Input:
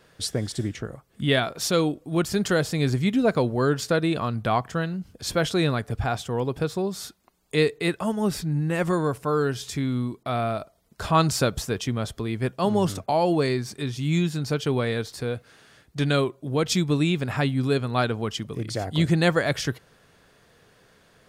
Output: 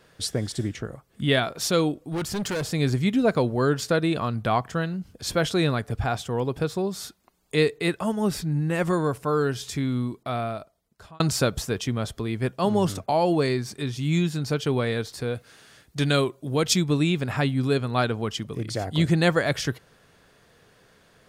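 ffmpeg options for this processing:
-filter_complex "[0:a]asettb=1/sr,asplit=3[a][b][c];[a]atrim=end=2.034[d];[b]atrim=start=2.03:end=2.65,asetpts=PTS-STARTPTS,afade=t=in:d=0.004:c=qsin,afade=t=out:st=0.616:d=0.004:c=qsin,volume=25dB,asoftclip=hard,volume=-25dB[e];[c]atrim=start=2.646[f];[d][e]acrossfade=d=0.004:c1=hsin:c2=qsin[g];[g][f]acrossfade=d=0.004:c1=qsin:c2=hsin,asettb=1/sr,asplit=3[h][i][j];[h]atrim=end=15.354[k];[i]atrim=start=15.35:end=16.74,asetpts=PTS-STARTPTS,afade=t=in:d=0.004:c=qsin,afade=t=out:st=1.386:d=0.004:c=qsin,highshelf=f=3.7k:g=6[l];[j]atrim=start=16.736[m];[k][l]acrossfade=d=0.004:c1=hsin:c2=qsin[n];[n][m]acrossfade=d=0.004:c1=qsin:c2=hsin,asplit=2[o][p];[o]atrim=end=11.2,asetpts=PTS-STARTPTS,afade=t=out:st=10.13:d=1.07[q];[p]atrim=start=11.2,asetpts=PTS-STARTPTS,afade=t=in:d=0.004:c=hsin[r];[q][r]concat=n=2:v=0:a=1"

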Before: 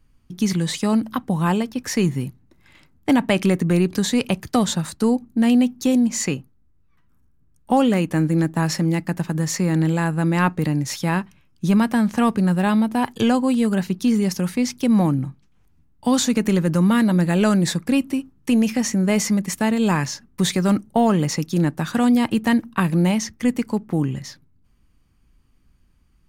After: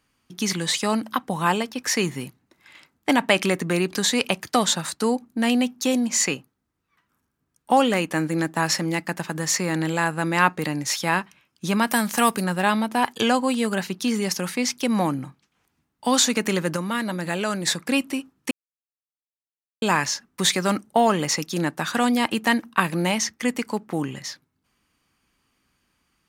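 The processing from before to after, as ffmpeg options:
-filter_complex "[0:a]asettb=1/sr,asplit=3[a][b][c];[a]atrim=end=11.874[d];[b]atrim=start=11.87:end=12.44,asetpts=PTS-STARTPTS,afade=t=in:d=0.004:c=qsin,afade=t=out:st=0.566:d=0.004:c=qsin,aemphasis=mode=production:type=50fm[e];[c]atrim=start=12.436[f];[d][e]acrossfade=d=0.004:c1=hsin:c2=qsin[g];[g][f]acrossfade=d=0.004:c1=qsin:c2=hsin,asettb=1/sr,asplit=3[h][i][j];[h]atrim=end=16.764[k];[i]atrim=start=16.76:end=17.8,asetpts=PTS-STARTPTS,afade=t=in:d=0.004:c=qsin,afade=t=out:st=1.036:d=0.004:c=qsin,acompressor=threshold=-19dB:ratio=6:attack=3.2:release=140:knee=1:detection=peak[l];[j]atrim=start=17.796[m];[k][l]acrossfade=d=0.004:c1=hsin:c2=qsin[n];[n][m]acrossfade=d=0.004:c1=qsin:c2=hsin,asplit=3[o][p][q];[o]atrim=end=18.51,asetpts=PTS-STARTPTS,afade=t=out:st=18.506:d=0.004:c=hsin[r];[p]atrim=start=18.51:end=19.82,asetpts=PTS-STARTPTS,volume=0[s];[q]atrim=start=19.82,asetpts=PTS-STARTPTS,afade=t=in:d=0.004:c=hsin[t];[r][s][t]concat=n=3:v=0:a=1,highpass=f=790:p=1,highshelf=f=11k:g=-4.5,volume=5dB"

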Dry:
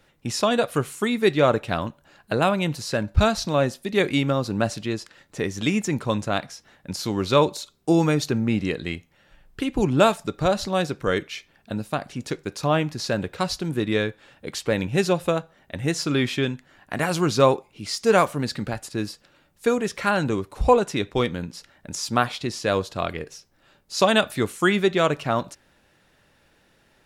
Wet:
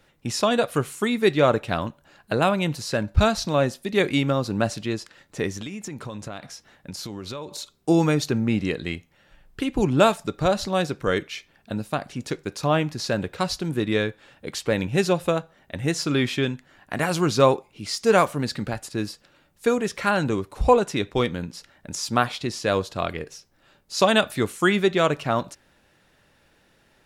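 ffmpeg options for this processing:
-filter_complex "[0:a]asettb=1/sr,asplit=3[a][b][c];[a]atrim=end=5.574[d];[b]atrim=start=5.57:end=7.58,asetpts=PTS-STARTPTS,afade=t=in:d=0.004:c=qsin,afade=t=out:st=2.006:d=0.004:c=qsin,acompressor=threshold=-30dB:ratio=12:attack=3.2:release=140:knee=1:detection=peak[e];[c]atrim=start=7.576[f];[d][e]acrossfade=d=0.004:c1=hsin:c2=qsin[g];[g][f]acrossfade=d=0.004:c1=qsin:c2=hsin"

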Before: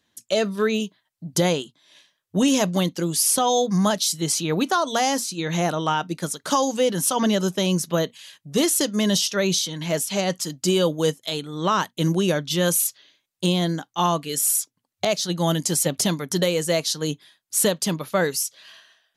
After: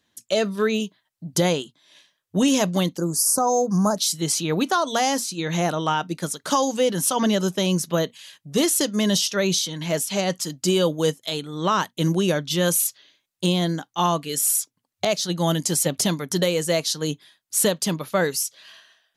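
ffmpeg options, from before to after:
-filter_complex "[0:a]asplit=3[a][b][c];[a]afade=t=out:st=2.96:d=0.02[d];[b]asuperstop=centerf=2700:order=8:qfactor=0.77,afade=t=in:st=2.96:d=0.02,afade=t=out:st=3.96:d=0.02[e];[c]afade=t=in:st=3.96:d=0.02[f];[d][e][f]amix=inputs=3:normalize=0"

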